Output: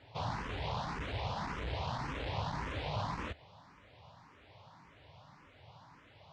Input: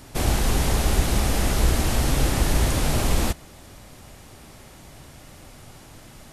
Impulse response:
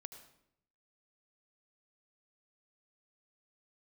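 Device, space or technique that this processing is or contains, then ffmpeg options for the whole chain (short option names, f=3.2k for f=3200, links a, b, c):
barber-pole phaser into a guitar amplifier: -filter_complex "[0:a]asplit=2[a][b];[b]afreqshift=1.8[c];[a][c]amix=inputs=2:normalize=1,asoftclip=type=tanh:threshold=-17dB,highpass=100,equalizer=f=100:t=q:w=4:g=4,equalizer=f=230:t=q:w=4:g=-8,equalizer=f=350:t=q:w=4:g=-9,equalizer=f=980:t=q:w=4:g=9,lowpass=f=4.2k:w=0.5412,lowpass=f=4.2k:w=1.3066,volume=-8dB"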